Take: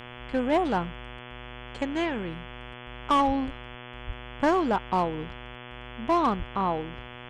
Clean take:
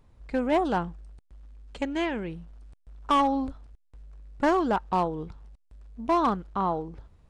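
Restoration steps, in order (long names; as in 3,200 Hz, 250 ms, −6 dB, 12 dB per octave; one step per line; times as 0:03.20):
hum removal 122.6 Hz, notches 28
0:03.26–0:03.38: high-pass filter 140 Hz 24 dB per octave
0:04.06–0:04.18: high-pass filter 140 Hz 24 dB per octave
0:06.38–0:06.50: high-pass filter 140 Hz 24 dB per octave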